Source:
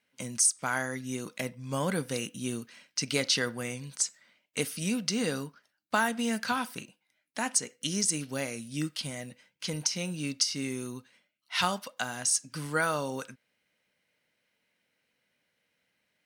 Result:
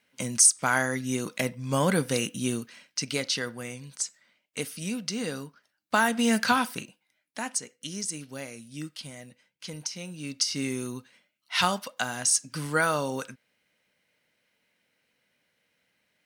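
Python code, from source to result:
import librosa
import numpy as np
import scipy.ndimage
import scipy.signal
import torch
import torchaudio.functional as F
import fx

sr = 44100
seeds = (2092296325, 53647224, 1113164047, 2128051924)

y = fx.gain(x, sr, db=fx.line((2.4, 6.0), (3.29, -2.0), (5.47, -2.0), (6.41, 8.0), (7.76, -5.0), (10.15, -5.0), (10.57, 3.5)))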